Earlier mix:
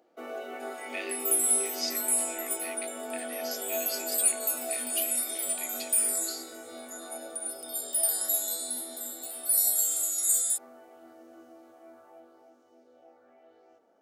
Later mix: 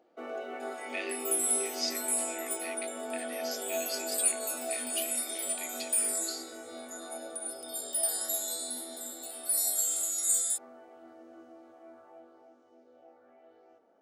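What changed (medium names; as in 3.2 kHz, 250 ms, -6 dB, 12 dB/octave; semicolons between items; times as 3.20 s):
first sound: add treble shelf 4.4 kHz -8 dB; master: add peaking EQ 13 kHz -9.5 dB 0.5 oct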